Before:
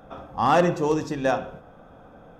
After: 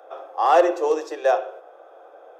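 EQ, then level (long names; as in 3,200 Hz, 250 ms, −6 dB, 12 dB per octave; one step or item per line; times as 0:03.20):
Butterworth high-pass 330 Hz 96 dB per octave
parametric band 630 Hz +7 dB 1.3 octaves
notch filter 930 Hz, Q 15
−1.5 dB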